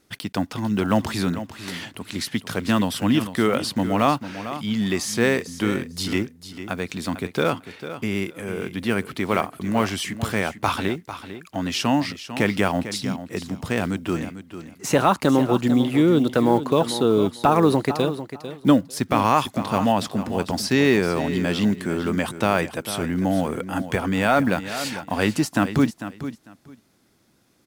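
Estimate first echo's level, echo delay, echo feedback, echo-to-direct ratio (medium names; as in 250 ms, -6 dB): -12.0 dB, 448 ms, 18%, -12.0 dB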